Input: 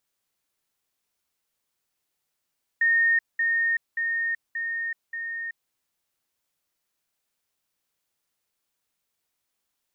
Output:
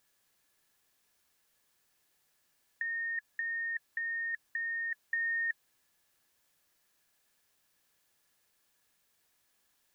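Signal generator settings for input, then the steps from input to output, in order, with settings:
level ladder 1840 Hz -17.5 dBFS, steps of -3 dB, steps 5, 0.38 s 0.20 s
limiter -26.5 dBFS; negative-ratio compressor -36 dBFS, ratio -1; small resonant body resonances 1700 Hz, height 11 dB

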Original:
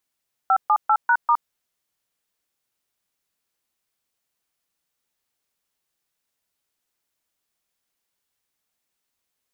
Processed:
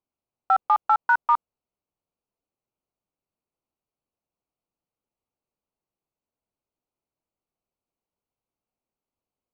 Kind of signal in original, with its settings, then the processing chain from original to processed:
DTMF "578#*", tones 65 ms, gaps 0.132 s, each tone -16.5 dBFS
Wiener smoothing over 25 samples

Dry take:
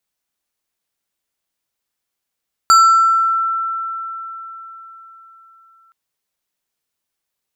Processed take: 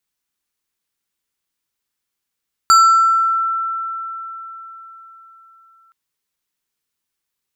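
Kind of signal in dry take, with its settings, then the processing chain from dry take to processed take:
FM tone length 3.22 s, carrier 1340 Hz, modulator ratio 4.46, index 0.56, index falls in 1.00 s exponential, decay 4.28 s, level -5 dB
bell 650 Hz -8 dB 0.57 oct

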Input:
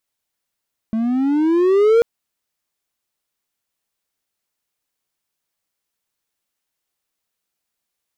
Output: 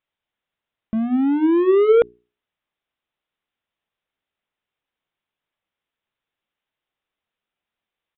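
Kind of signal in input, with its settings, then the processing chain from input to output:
gliding synth tone triangle, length 1.09 s, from 218 Hz, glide +13.5 st, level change +8 dB, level -7 dB
notches 60/120/180/240/300/360/420 Hz; downsampling 8000 Hz

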